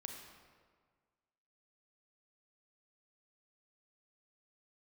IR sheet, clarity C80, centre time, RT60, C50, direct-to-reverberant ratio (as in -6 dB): 5.0 dB, 54 ms, 1.7 s, 3.5 dB, 2.5 dB